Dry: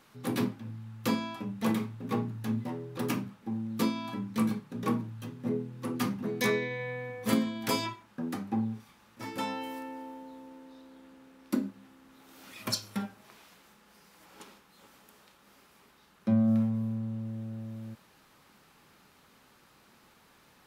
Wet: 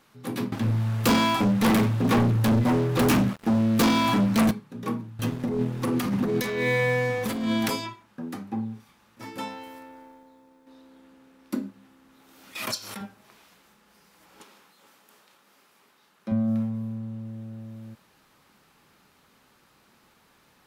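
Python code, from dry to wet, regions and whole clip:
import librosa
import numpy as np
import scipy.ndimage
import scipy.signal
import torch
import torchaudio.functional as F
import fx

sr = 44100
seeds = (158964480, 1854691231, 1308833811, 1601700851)

y = fx.chain(x, sr, fx.doubler(ms=16.0, db=-14.0),
    fx.leveller(passes=5), at=(0.52, 4.51))
y = fx.chain(y, sr, fx.leveller(passes=3),
    fx.over_compress(threshold_db=-25.0, ratio=-1.0), at=(5.19, 7.7))
y = fx.chain(y, sr, fx.law_mismatch(coded='A'),
    fx.peak_eq(hz=290.0, db=-5.5, octaves=0.21),
    fx.notch(hz=2900.0, q=11.0), at=(9.48, 10.67))
y = fx.chain(y, sr, fx.highpass(hz=480.0, slope=6),
    fx.pre_swell(db_per_s=45.0), at=(12.55, 13.01))
y = fx.chain(y, sr, fx.highpass(hz=310.0, slope=6),
    fx.sustainer(db_per_s=26.0), at=(14.43, 16.32))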